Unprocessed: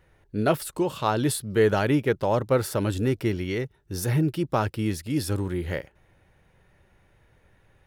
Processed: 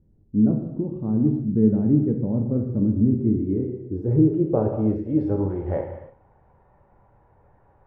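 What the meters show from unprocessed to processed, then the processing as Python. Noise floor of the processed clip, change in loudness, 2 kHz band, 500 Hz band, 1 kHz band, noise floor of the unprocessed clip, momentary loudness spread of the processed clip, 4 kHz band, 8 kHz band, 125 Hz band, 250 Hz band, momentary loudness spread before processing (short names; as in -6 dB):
-59 dBFS, +3.5 dB, under -20 dB, -1.5 dB, -10.5 dB, -63 dBFS, 9 LU, under -35 dB, under -40 dB, +3.5 dB, +7.5 dB, 8 LU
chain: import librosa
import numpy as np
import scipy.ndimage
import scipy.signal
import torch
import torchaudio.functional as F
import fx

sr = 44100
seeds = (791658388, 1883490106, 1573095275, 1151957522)

y = fx.rev_gated(x, sr, seeds[0], gate_ms=350, shape='falling', drr_db=2.0)
y = fx.filter_sweep_lowpass(y, sr, from_hz=240.0, to_hz=910.0, start_s=3.11, end_s=6.1, q=2.7)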